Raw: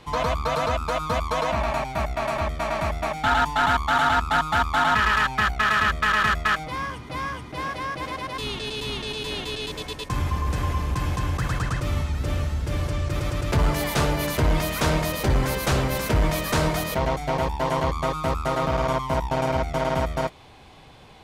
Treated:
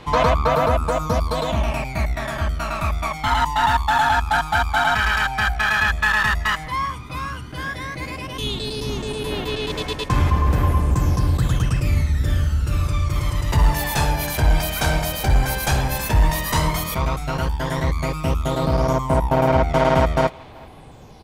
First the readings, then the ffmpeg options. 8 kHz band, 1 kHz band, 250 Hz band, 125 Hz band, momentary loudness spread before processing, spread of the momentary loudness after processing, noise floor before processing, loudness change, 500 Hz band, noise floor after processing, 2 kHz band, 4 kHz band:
+4.0 dB, +2.5 dB, +3.0 dB, +5.5 dB, 9 LU, 8 LU, -41 dBFS, +3.5 dB, +3.0 dB, -38 dBFS, +3.0 dB, +2.5 dB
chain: -filter_complex "[0:a]highshelf=f=11k:g=7,aphaser=in_gain=1:out_gain=1:delay=1.3:decay=0.59:speed=0.1:type=sinusoidal,asplit=2[a][b];[b]adelay=380,highpass=300,lowpass=3.4k,asoftclip=type=hard:threshold=-15.5dB,volume=-23dB[c];[a][c]amix=inputs=2:normalize=0"

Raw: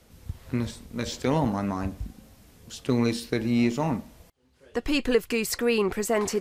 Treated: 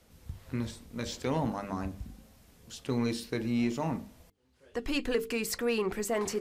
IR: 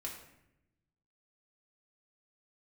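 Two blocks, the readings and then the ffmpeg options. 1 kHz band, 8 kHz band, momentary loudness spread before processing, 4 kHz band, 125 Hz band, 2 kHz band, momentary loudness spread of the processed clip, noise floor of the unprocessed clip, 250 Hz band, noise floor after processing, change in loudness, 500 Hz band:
-5.5 dB, -5.0 dB, 11 LU, -5.5 dB, -6.5 dB, -6.0 dB, 15 LU, -58 dBFS, -6.5 dB, -64 dBFS, -6.0 dB, -6.0 dB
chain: -af "bandreject=f=50:t=h:w=6,bandreject=f=100:t=h:w=6,bandreject=f=150:t=h:w=6,bandreject=f=200:t=h:w=6,bandreject=f=250:t=h:w=6,bandreject=f=300:t=h:w=6,bandreject=f=350:t=h:w=6,bandreject=f=400:t=h:w=6,bandreject=f=450:t=h:w=6,aeval=exprs='0.316*(cos(1*acos(clip(val(0)/0.316,-1,1)))-cos(1*PI/2))+0.02*(cos(5*acos(clip(val(0)/0.316,-1,1)))-cos(5*PI/2))':c=same,volume=-7dB"

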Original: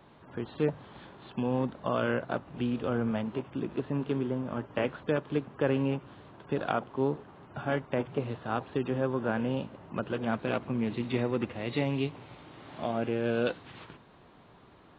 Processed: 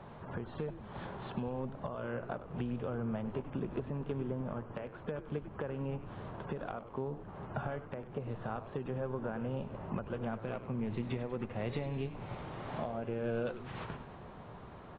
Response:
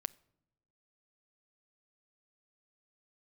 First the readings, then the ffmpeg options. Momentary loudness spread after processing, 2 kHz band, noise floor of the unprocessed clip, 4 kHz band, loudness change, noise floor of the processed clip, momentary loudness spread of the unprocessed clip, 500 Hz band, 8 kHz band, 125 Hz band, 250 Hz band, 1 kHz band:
7 LU, -9.5 dB, -56 dBFS, -11.0 dB, -7.5 dB, -50 dBFS, 14 LU, -7.5 dB, n/a, -4.0 dB, -8.0 dB, -6.5 dB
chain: -filter_complex "[0:a]lowpass=f=1.1k:p=1,equalizer=f=300:w=2.7:g=-9,acompressor=threshold=-42dB:ratio=6,alimiter=level_in=10.5dB:limit=-24dB:level=0:latency=1:release=423,volume=-10.5dB,asplit=2[a][b];[b]asplit=7[c][d][e][f][g][h][i];[c]adelay=98,afreqshift=-120,volume=-12dB[j];[d]adelay=196,afreqshift=-240,volume=-16.6dB[k];[e]adelay=294,afreqshift=-360,volume=-21.2dB[l];[f]adelay=392,afreqshift=-480,volume=-25.7dB[m];[g]adelay=490,afreqshift=-600,volume=-30.3dB[n];[h]adelay=588,afreqshift=-720,volume=-34.9dB[o];[i]adelay=686,afreqshift=-840,volume=-39.5dB[p];[j][k][l][m][n][o][p]amix=inputs=7:normalize=0[q];[a][q]amix=inputs=2:normalize=0,volume=9dB"

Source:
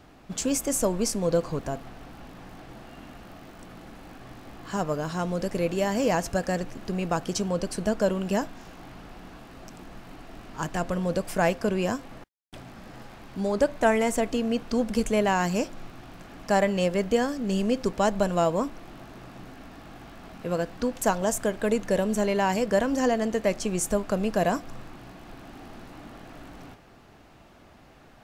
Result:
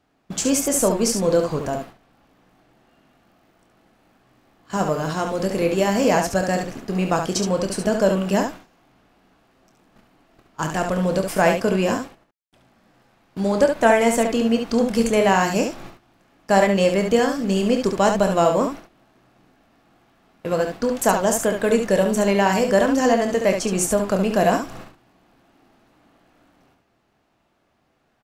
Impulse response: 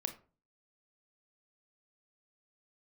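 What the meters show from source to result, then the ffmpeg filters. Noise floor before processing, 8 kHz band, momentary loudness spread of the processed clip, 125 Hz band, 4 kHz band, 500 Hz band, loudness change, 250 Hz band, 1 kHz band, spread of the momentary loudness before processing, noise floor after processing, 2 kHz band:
-53 dBFS, +7.0 dB, 9 LU, +5.0 dB, +6.5 dB, +6.5 dB, +6.5 dB, +6.0 dB, +6.5 dB, 21 LU, -66 dBFS, +7.0 dB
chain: -af "agate=range=-19dB:threshold=-38dB:ratio=16:detection=peak,lowshelf=f=84:g=-9,aecho=1:1:26|70:0.355|0.501,volume=5.5dB"

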